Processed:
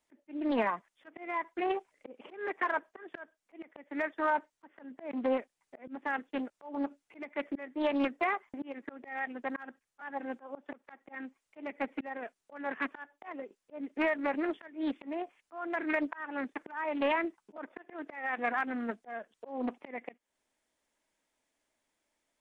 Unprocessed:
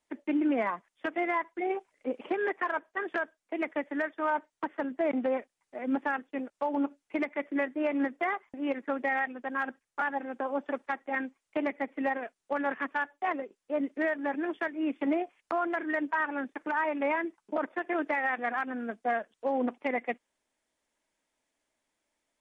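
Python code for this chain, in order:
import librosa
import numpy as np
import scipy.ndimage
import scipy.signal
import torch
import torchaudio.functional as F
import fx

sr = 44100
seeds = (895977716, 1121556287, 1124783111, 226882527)

y = fx.auto_swell(x, sr, attack_ms=315.0)
y = fx.doppler_dist(y, sr, depth_ms=0.45)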